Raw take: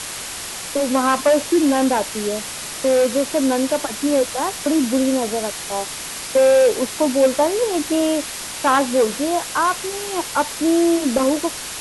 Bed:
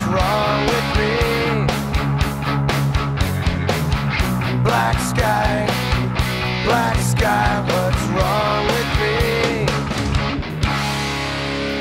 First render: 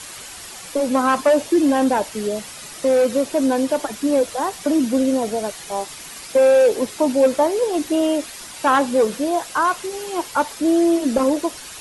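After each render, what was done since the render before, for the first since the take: denoiser 9 dB, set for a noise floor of -30 dBFS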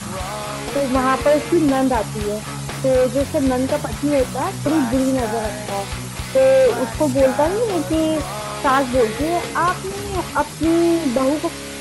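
add bed -10 dB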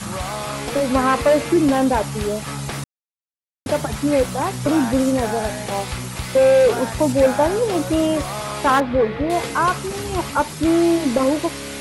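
2.84–3.66 mute; 8.8–9.3 air absorption 360 m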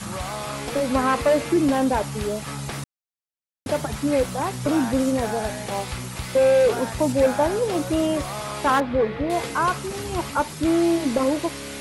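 gain -3.5 dB

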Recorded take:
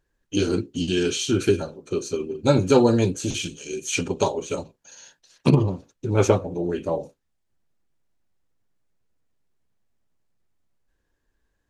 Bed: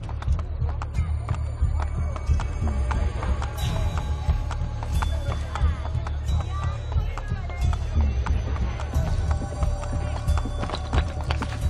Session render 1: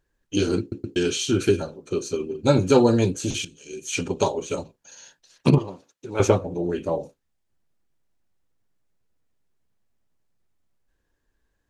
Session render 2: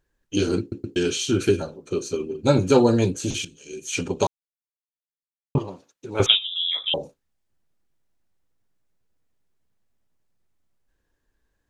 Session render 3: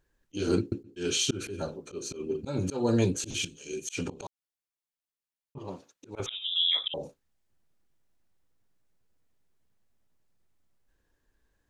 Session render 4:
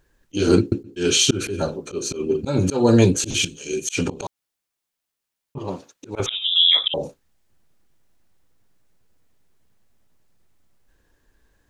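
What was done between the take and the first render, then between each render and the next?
0.6 stutter in place 0.12 s, 3 plays; 3.45–4.14 fade in, from -14 dB; 5.58–6.2 HPF 720 Hz 6 dB/oct
4.27–5.55 mute; 6.26–6.94 inverted band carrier 3700 Hz
compressor 12:1, threshold -19 dBFS, peak gain reduction 9 dB; auto swell 0.195 s
gain +10.5 dB

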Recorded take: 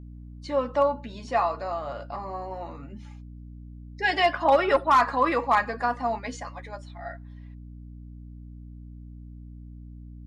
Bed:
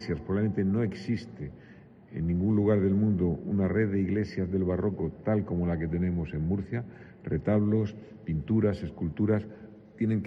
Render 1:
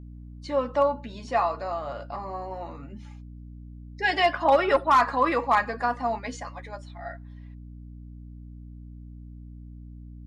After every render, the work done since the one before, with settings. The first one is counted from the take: nothing audible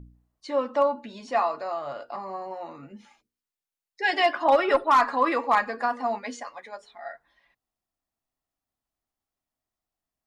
de-hum 60 Hz, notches 8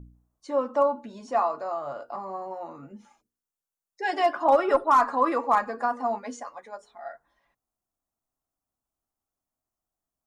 band shelf 2900 Hz -9 dB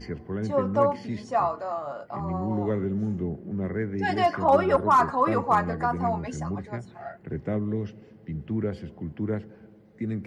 add bed -3 dB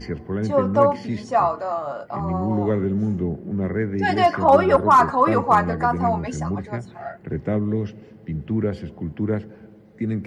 gain +5.5 dB

